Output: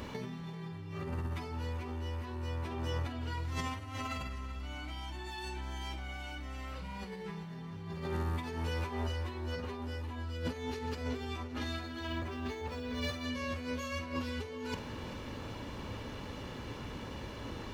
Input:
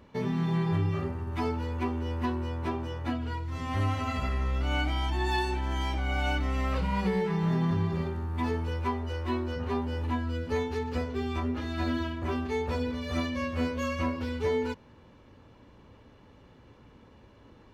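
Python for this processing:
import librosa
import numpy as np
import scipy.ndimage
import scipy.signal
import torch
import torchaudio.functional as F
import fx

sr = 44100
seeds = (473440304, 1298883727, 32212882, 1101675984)

y = fx.peak_eq(x, sr, hz=100.0, db=-7.0, octaves=1.0, at=(8.04, 9.08))
y = fx.over_compress(y, sr, threshold_db=-41.0, ratio=-1.0)
y = fx.high_shelf(y, sr, hz=2500.0, db=8.5)
y = fx.doubler(y, sr, ms=47.0, db=-13.0)
y = fx.echo_feedback(y, sr, ms=388, feedback_pct=57, wet_db=-15.0)
y = fx.resample_linear(y, sr, factor=2, at=(12.07, 13.24))
y = y * librosa.db_to_amplitude(1.0)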